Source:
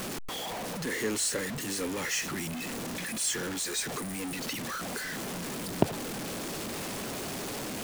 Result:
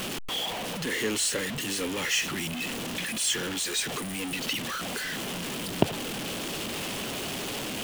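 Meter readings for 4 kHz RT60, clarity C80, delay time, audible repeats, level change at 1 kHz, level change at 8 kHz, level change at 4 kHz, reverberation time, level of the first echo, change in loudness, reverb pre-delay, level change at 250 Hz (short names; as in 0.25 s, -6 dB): none, none, none, none, +2.0 dB, +2.0 dB, +7.0 dB, none, none, +3.0 dB, none, +1.5 dB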